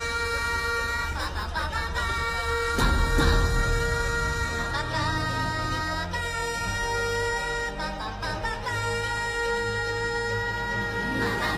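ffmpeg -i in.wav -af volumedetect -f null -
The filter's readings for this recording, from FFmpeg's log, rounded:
mean_volume: -26.7 dB
max_volume: -9.8 dB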